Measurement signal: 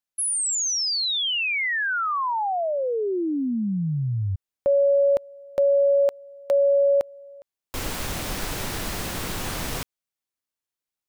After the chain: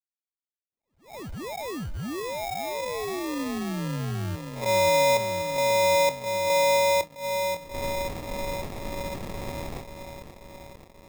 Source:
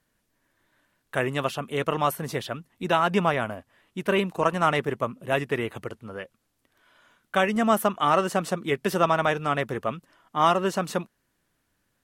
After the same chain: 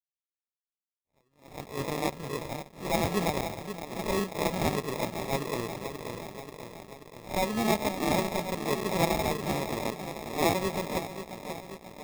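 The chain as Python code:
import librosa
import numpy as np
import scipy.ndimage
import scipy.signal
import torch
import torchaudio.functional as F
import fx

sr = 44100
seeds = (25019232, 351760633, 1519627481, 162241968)

p1 = fx.spec_swells(x, sr, rise_s=0.35)
p2 = fx.air_absorb(p1, sr, metres=300.0)
p3 = fx.comb_fb(p2, sr, f0_hz=280.0, decay_s=0.97, harmonics='all', damping=0.1, mix_pct=40)
p4 = p3 + fx.echo_wet_lowpass(p3, sr, ms=534, feedback_pct=74, hz=1100.0, wet_db=-8, dry=0)
p5 = fx.sample_hold(p4, sr, seeds[0], rate_hz=1500.0, jitter_pct=0)
p6 = np.sign(p5) * np.maximum(np.abs(p5) - 10.0 ** (-44.0 / 20.0), 0.0)
y = fx.attack_slew(p6, sr, db_per_s=160.0)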